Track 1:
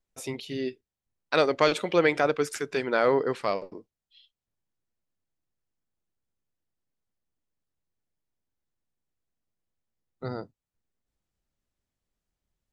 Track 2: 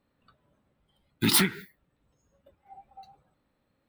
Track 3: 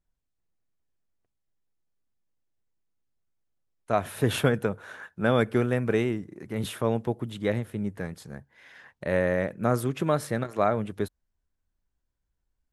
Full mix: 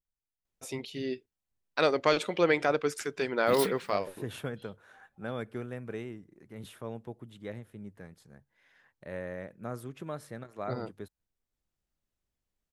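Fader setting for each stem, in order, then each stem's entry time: −3.0, −13.0, −14.0 decibels; 0.45, 2.25, 0.00 seconds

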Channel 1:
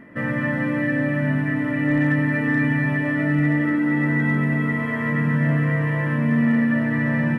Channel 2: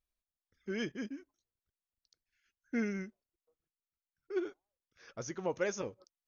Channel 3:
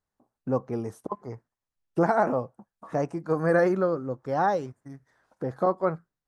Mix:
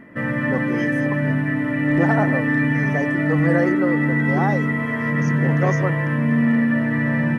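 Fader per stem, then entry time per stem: +1.0, +2.0, 0.0 decibels; 0.00, 0.00, 0.00 seconds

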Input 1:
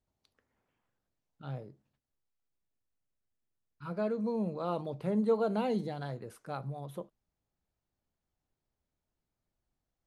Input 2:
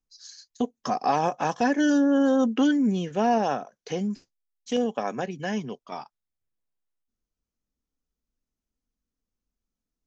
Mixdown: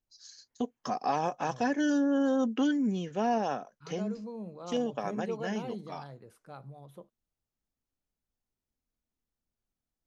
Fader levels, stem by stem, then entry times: −8.0, −6.0 decibels; 0.00, 0.00 seconds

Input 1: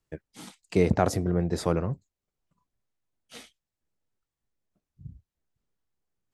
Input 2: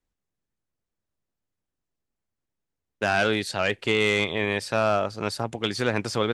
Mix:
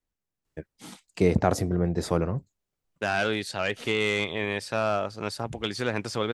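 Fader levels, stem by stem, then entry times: +0.5, −3.5 decibels; 0.45, 0.00 seconds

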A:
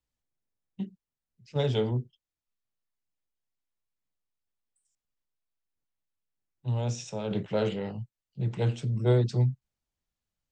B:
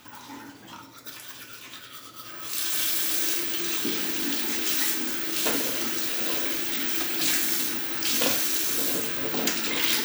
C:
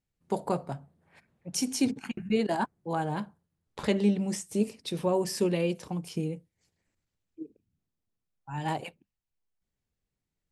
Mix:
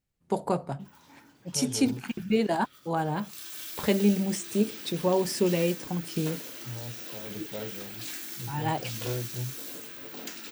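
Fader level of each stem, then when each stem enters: −10.5, −14.0, +2.0 decibels; 0.00, 0.80, 0.00 seconds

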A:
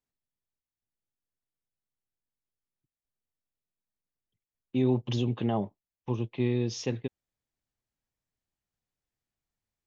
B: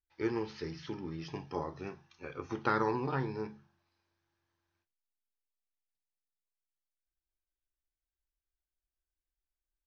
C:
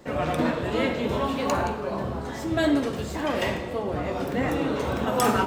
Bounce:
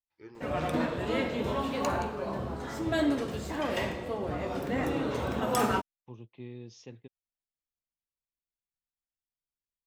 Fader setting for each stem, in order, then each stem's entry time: −16.0, −16.0, −5.0 decibels; 0.00, 0.00, 0.35 seconds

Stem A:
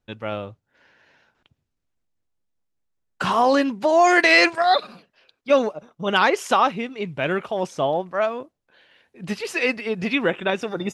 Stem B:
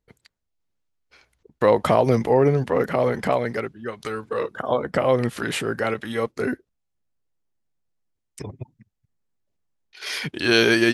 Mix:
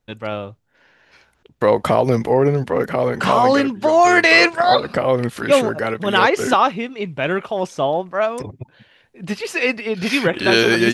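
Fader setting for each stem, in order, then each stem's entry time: +3.0, +2.0 decibels; 0.00, 0.00 seconds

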